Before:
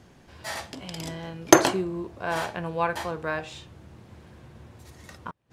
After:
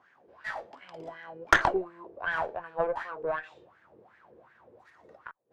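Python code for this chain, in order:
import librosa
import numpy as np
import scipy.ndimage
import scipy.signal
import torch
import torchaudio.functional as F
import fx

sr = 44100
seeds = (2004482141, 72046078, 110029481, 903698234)

y = fx.wah_lfo(x, sr, hz=2.7, low_hz=430.0, high_hz=1800.0, q=5.6)
y = fx.cheby_harmonics(y, sr, harmonics=(6, 7), levels_db=(-21, -33), full_scale_db=-12.5)
y = y * librosa.db_to_amplitude(8.0)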